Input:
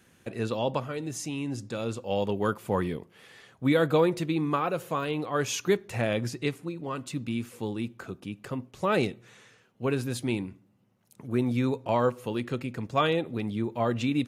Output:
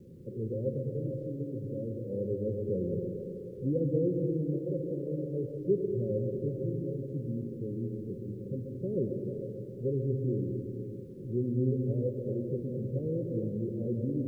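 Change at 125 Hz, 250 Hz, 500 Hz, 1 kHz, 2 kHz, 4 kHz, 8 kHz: +0.5 dB, −4.0 dB, −3.5 dB, below −40 dB, below −40 dB, below −35 dB, below −30 dB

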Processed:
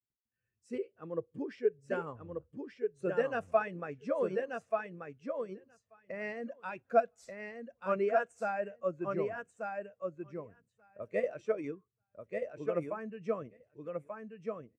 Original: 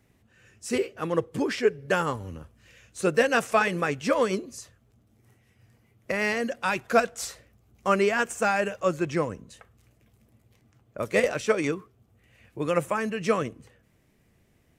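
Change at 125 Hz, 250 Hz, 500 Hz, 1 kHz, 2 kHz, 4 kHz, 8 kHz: −12.0 dB, −11.0 dB, −6.5 dB, −9.0 dB, −13.5 dB, below −20 dB, below −25 dB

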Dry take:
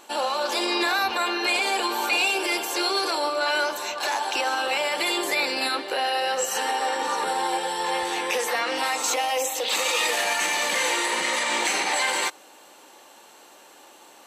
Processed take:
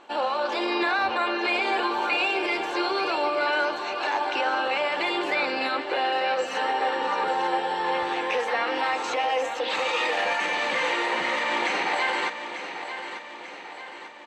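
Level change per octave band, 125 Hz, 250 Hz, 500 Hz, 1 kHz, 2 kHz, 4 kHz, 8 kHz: can't be measured, +1.0 dB, +1.0 dB, +0.5 dB, −0.5 dB, −5.0 dB, −17.0 dB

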